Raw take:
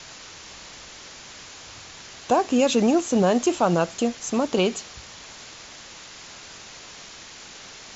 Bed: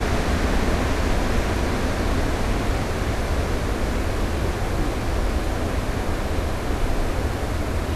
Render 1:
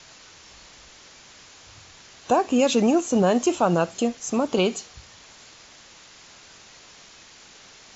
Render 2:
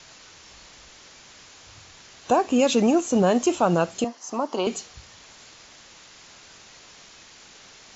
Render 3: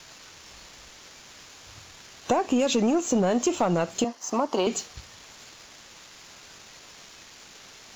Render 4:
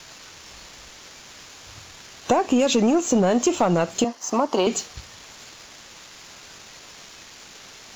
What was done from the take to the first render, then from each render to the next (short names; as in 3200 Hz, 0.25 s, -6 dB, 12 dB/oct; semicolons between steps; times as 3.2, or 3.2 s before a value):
noise print and reduce 6 dB
4.04–4.67 speaker cabinet 350–5900 Hz, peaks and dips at 470 Hz -7 dB, 980 Hz +6 dB, 1500 Hz -4 dB, 2400 Hz -10 dB, 3600 Hz -9 dB
sample leveller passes 1; compressor, threshold -20 dBFS, peak gain reduction 7 dB
gain +4 dB